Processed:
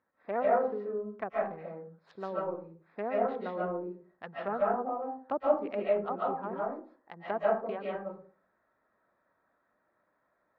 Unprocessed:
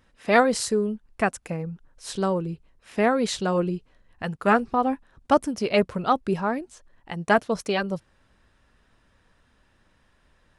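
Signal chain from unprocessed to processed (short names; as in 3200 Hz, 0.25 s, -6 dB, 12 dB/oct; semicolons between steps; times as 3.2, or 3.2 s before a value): Wiener smoothing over 15 samples; weighting filter A; treble ducked by the level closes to 770 Hz, closed at -22.5 dBFS; air absorption 320 m; reverb RT60 0.40 s, pre-delay 0.105 s, DRR -5 dB; gain -8.5 dB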